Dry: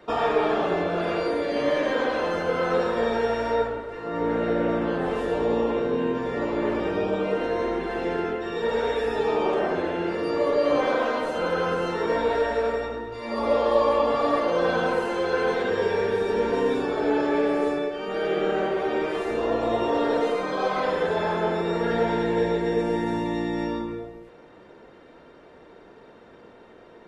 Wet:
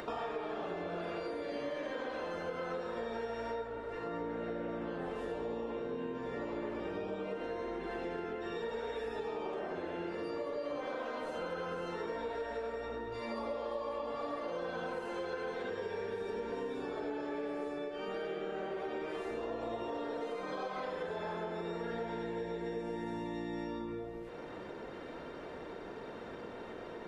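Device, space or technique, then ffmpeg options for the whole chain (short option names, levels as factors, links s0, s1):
upward and downward compression: -af "acompressor=mode=upward:threshold=0.0447:ratio=2.5,acompressor=threshold=0.0355:ratio=6,volume=0.447"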